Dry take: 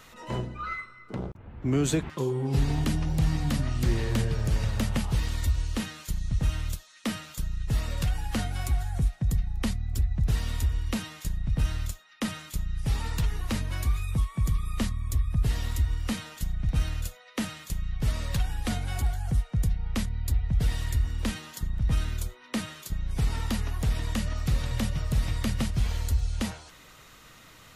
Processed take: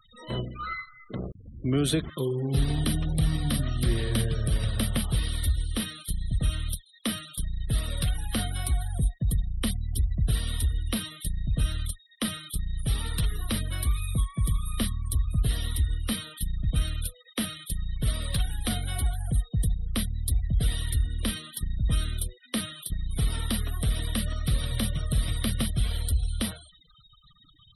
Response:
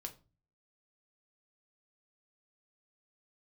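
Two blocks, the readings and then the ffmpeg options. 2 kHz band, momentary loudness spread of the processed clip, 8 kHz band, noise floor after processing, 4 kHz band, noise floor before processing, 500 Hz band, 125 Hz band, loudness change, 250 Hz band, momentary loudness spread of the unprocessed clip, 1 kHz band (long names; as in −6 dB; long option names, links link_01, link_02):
−1.0 dB, 7 LU, +5.0 dB, −58 dBFS, +5.0 dB, −52 dBFS, 0.0 dB, 0.0 dB, +0.5 dB, 0.0 dB, 8 LU, −2.5 dB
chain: -af "superequalizer=9b=0.501:13b=2.24:15b=0.355:16b=3.55,afftfilt=real='re*gte(hypot(re,im),0.01)':imag='im*gte(hypot(re,im),0.01)':win_size=1024:overlap=0.75"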